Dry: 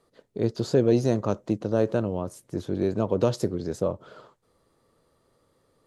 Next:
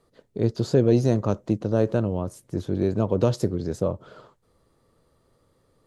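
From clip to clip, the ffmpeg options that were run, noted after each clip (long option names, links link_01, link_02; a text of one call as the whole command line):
ffmpeg -i in.wav -af "lowshelf=frequency=150:gain=8" out.wav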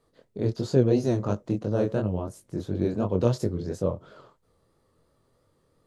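ffmpeg -i in.wav -af "flanger=delay=19:depth=6.5:speed=2.9" out.wav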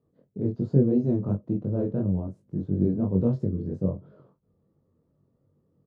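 ffmpeg -i in.wav -filter_complex "[0:a]bandpass=frequency=170:width_type=q:width=1.2:csg=0,asplit=2[link_01][link_02];[link_02]adelay=21,volume=-4dB[link_03];[link_01][link_03]amix=inputs=2:normalize=0,volume=3.5dB" out.wav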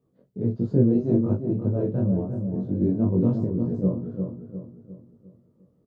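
ffmpeg -i in.wav -filter_complex "[0:a]flanger=delay=15.5:depth=2.5:speed=0.47,asplit=2[link_01][link_02];[link_02]adelay=353,lowpass=frequency=1200:poles=1,volume=-5.5dB,asplit=2[link_03][link_04];[link_04]adelay=353,lowpass=frequency=1200:poles=1,volume=0.46,asplit=2[link_05][link_06];[link_06]adelay=353,lowpass=frequency=1200:poles=1,volume=0.46,asplit=2[link_07][link_08];[link_08]adelay=353,lowpass=frequency=1200:poles=1,volume=0.46,asplit=2[link_09][link_10];[link_10]adelay=353,lowpass=frequency=1200:poles=1,volume=0.46,asplit=2[link_11][link_12];[link_12]adelay=353,lowpass=frequency=1200:poles=1,volume=0.46[link_13];[link_03][link_05][link_07][link_09][link_11][link_13]amix=inputs=6:normalize=0[link_14];[link_01][link_14]amix=inputs=2:normalize=0,volume=4.5dB" out.wav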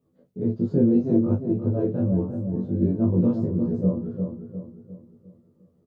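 ffmpeg -i in.wav -filter_complex "[0:a]asplit=2[link_01][link_02];[link_02]adelay=12,volume=-2.5dB[link_03];[link_01][link_03]amix=inputs=2:normalize=0,volume=-1dB" out.wav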